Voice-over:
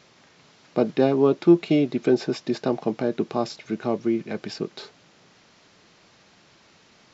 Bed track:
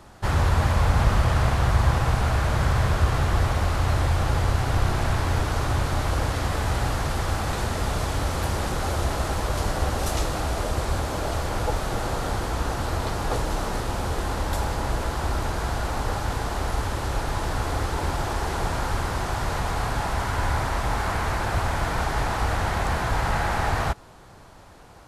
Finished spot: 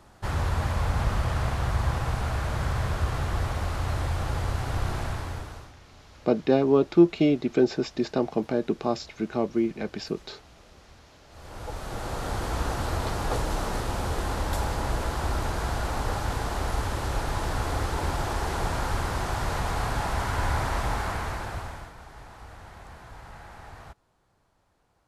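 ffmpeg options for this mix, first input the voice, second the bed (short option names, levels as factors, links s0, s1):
-filter_complex "[0:a]adelay=5500,volume=0.841[s0];[1:a]volume=10.6,afade=t=out:st=4.96:d=0.77:silence=0.0749894,afade=t=in:st=11.29:d=1.27:silence=0.0473151,afade=t=out:st=20.8:d=1.13:silence=0.112202[s1];[s0][s1]amix=inputs=2:normalize=0"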